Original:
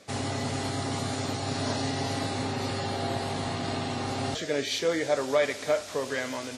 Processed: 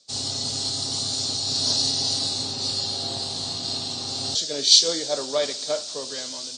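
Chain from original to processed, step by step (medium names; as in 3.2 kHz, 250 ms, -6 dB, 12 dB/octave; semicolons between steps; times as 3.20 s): Chebyshev low-pass 9.2 kHz, order 8; resonant high shelf 3 kHz +13 dB, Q 3; three bands expanded up and down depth 70%; trim -3.5 dB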